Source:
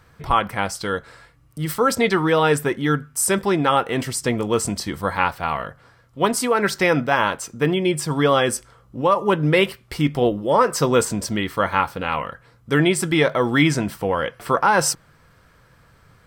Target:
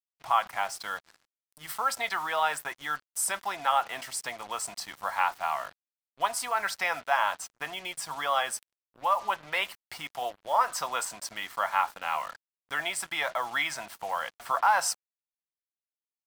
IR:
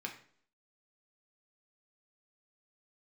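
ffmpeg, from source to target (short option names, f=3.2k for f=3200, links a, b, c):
-filter_complex "[0:a]highpass=120,lowshelf=f=560:t=q:w=3:g=-7,acrossover=split=540|1300[a][b][c];[a]acompressor=threshold=-44dB:ratio=10[d];[d][b][c]amix=inputs=3:normalize=0,acrusher=bits=5:mix=0:aa=0.5,volume=-8dB"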